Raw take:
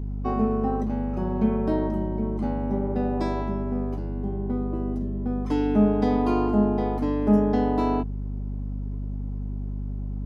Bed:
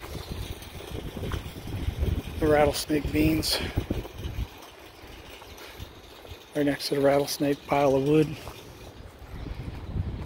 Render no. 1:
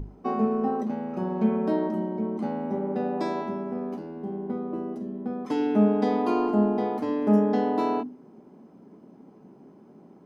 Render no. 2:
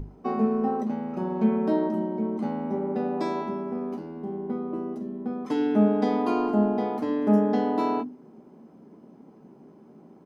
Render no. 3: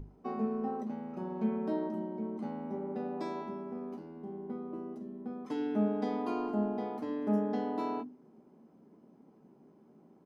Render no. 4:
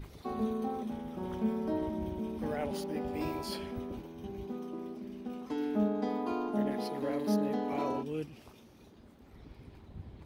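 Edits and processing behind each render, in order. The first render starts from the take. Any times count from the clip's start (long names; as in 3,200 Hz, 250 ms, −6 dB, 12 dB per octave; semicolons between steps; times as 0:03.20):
mains-hum notches 50/100/150/200/250/300 Hz
double-tracking delay 13 ms −12 dB
level −9.5 dB
mix in bed −16 dB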